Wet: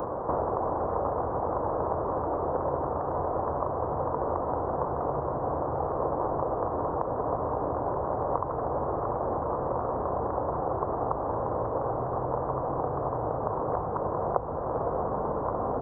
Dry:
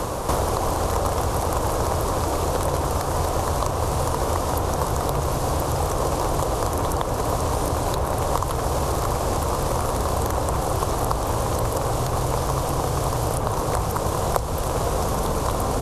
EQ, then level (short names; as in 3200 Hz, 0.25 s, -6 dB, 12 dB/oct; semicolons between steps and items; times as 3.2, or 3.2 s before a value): Gaussian blur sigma 9.5 samples; tilt +4.5 dB/oct; +3.0 dB